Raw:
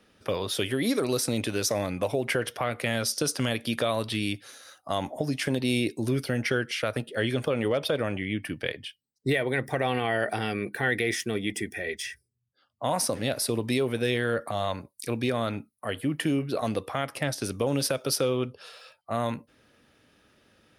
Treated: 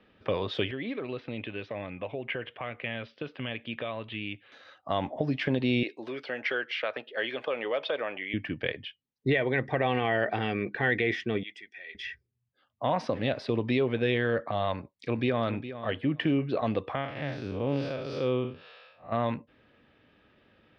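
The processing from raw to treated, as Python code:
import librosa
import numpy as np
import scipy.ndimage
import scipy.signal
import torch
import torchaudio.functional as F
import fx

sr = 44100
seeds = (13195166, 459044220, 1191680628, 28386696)

y = fx.ladder_lowpass(x, sr, hz=3400.0, resonance_pct=45, at=(0.71, 4.52))
y = fx.highpass(y, sr, hz=550.0, slope=12, at=(5.83, 8.34))
y = fx.bandpass_q(y, sr, hz=7800.0, q=0.68, at=(11.43, 11.95))
y = fx.echo_throw(y, sr, start_s=14.73, length_s=0.79, ms=410, feedback_pct=15, wet_db=-12.0)
y = fx.spec_blur(y, sr, span_ms=139.0, at=(16.95, 19.12))
y = scipy.signal.sosfilt(scipy.signal.butter(4, 3400.0, 'lowpass', fs=sr, output='sos'), y)
y = fx.notch(y, sr, hz=1400.0, q=15.0)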